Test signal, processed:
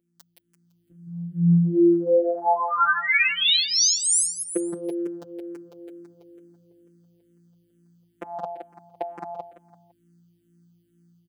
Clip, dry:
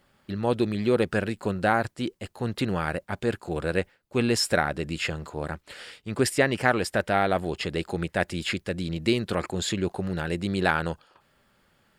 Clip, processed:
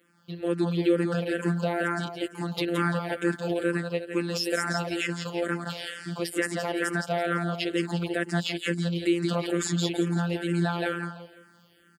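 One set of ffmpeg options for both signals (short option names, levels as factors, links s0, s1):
-filter_complex "[0:a]asplit=2[s0][s1];[s1]acompressor=threshold=0.0141:ratio=6,volume=0.708[s2];[s0][s2]amix=inputs=2:normalize=0,aeval=exprs='val(0)+0.00112*(sin(2*PI*60*n/s)+sin(2*PI*2*60*n/s)/2+sin(2*PI*3*60*n/s)/3+sin(2*PI*4*60*n/s)/4+sin(2*PI*5*60*n/s)/5)':c=same,lowshelf=f=160:t=q:w=1.5:g=-10.5,dynaudnorm=f=430:g=3:m=3.35,afftfilt=real='hypot(re,im)*cos(PI*b)':imag='0':win_size=1024:overlap=0.75,highpass=f=58:w=0.5412,highpass=f=58:w=1.3066,equalizer=f=940:t=o:w=0.65:g=-2.5,asplit=2[s3][s4];[s4]aecho=0:1:169|338|507|676:0.596|0.203|0.0689|0.0234[s5];[s3][s5]amix=inputs=2:normalize=0,alimiter=limit=0.316:level=0:latency=1:release=175,asplit=2[s6][s7];[s7]afreqshift=-2.2[s8];[s6][s8]amix=inputs=2:normalize=1"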